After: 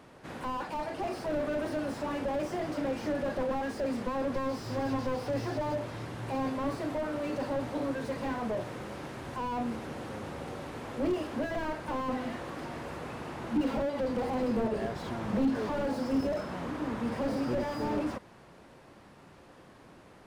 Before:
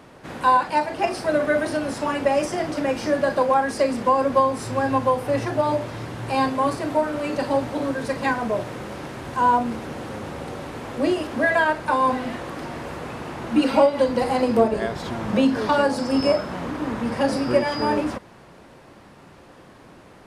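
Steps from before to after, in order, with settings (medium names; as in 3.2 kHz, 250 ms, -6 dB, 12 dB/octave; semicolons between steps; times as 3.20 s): 4.34–5.76 s: peaking EQ 5 kHz +15 dB 0.69 oct; slew-rate limiter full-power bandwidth 44 Hz; trim -7 dB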